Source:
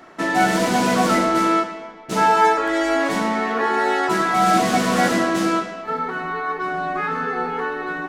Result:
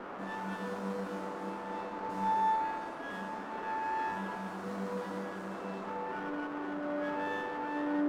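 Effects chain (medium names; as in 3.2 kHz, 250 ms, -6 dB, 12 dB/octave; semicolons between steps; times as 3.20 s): recorder AGC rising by 79 dB/s; tilt shelf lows +9 dB, about 680 Hz; peak limiter -12.5 dBFS, peak gain reduction 11 dB; bass shelf 220 Hz -8.5 dB; hum notches 50/100 Hz; feedback comb 98 Hz, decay 1.1 s, harmonics all, mix 100%; band noise 190–1400 Hz -44 dBFS; sliding maximum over 5 samples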